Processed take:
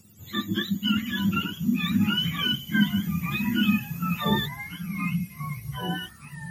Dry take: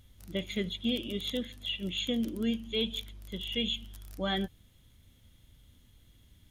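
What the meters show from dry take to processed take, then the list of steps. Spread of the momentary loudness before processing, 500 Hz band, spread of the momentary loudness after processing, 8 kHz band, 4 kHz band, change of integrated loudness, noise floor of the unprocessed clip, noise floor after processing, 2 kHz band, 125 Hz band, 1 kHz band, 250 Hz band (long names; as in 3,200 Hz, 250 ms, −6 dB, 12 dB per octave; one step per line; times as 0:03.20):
8 LU, −3.5 dB, 10 LU, +6.5 dB, +5.5 dB, +7.0 dB, −63 dBFS, −48 dBFS, +12.5 dB, +15.0 dB, +13.0 dB, +10.0 dB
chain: frequency axis turned over on the octave scale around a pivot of 830 Hz
delay with pitch and tempo change per echo 761 ms, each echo −3 semitones, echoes 3, each echo −6 dB
level +7.5 dB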